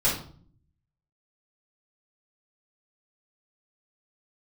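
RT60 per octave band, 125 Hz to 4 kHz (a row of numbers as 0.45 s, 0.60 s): 1.0 s, 0.85 s, 0.50 s, 0.45 s, 0.35 s, 0.40 s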